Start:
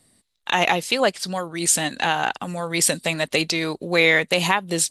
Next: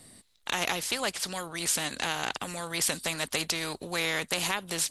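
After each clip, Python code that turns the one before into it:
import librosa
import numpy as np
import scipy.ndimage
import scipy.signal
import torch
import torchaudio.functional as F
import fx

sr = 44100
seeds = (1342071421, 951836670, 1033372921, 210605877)

y = fx.spectral_comp(x, sr, ratio=2.0)
y = F.gain(torch.from_numpy(y), -8.5).numpy()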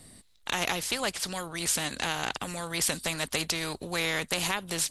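y = fx.low_shelf(x, sr, hz=120.0, db=7.5)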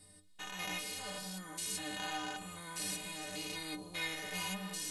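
y = fx.spec_steps(x, sr, hold_ms=200)
y = fx.stiff_resonator(y, sr, f0_hz=90.0, decay_s=0.47, stiffness=0.03)
y = F.gain(torch.from_numpy(y), 4.5).numpy()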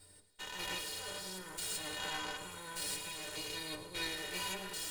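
y = fx.lower_of_two(x, sr, delay_ms=2.1)
y = fx.echo_feedback(y, sr, ms=107, feedback_pct=56, wet_db=-13.0)
y = F.gain(torch.from_numpy(y), 1.0).numpy()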